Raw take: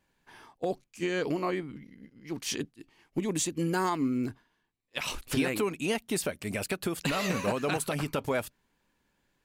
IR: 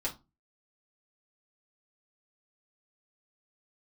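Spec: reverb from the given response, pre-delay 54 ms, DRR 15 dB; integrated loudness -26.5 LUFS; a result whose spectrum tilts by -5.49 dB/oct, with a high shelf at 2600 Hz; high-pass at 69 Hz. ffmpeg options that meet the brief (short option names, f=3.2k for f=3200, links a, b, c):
-filter_complex "[0:a]highpass=69,highshelf=f=2.6k:g=-8,asplit=2[a][b];[1:a]atrim=start_sample=2205,adelay=54[c];[b][c]afir=irnorm=-1:irlink=0,volume=-18.5dB[d];[a][d]amix=inputs=2:normalize=0,volume=6dB"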